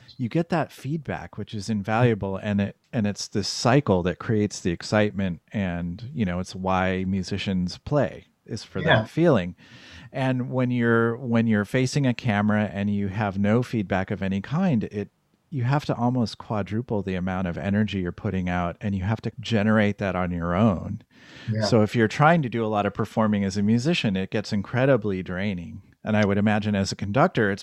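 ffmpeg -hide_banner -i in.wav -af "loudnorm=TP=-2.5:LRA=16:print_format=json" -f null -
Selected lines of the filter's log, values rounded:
"input_i" : "-24.3",
"input_tp" : "-3.8",
"input_lra" : "3.7",
"input_thresh" : "-34.6",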